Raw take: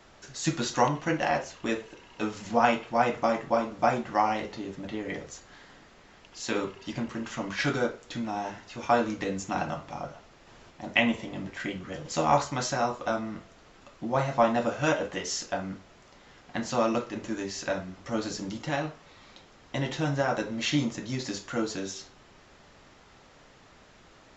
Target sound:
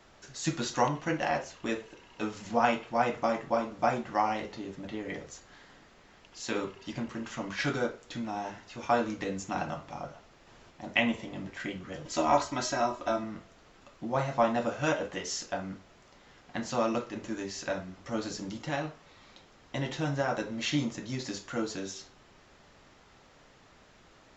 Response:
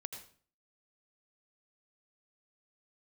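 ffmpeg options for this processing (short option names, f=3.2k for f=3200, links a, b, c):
-filter_complex "[0:a]asettb=1/sr,asplit=3[a][b][c];[a]atrim=end=12.054[d];[b]atrim=start=12.05:end=13.24,asetpts=PTS-STARTPTS,afade=t=in:d=0.004:c=qsin,afade=t=out:st=1.186:d=0.004:c=qsin,aecho=1:1:3.1:0.64,atrim=end_sample=52479[e];[c]atrim=start=13.236[f];[d][e]acrossfade=d=0.004:c1=hsin:c2=qsin[g];[g][f]acrossfade=d=0.004:c1=qsin:c2=hsin,volume=-3dB"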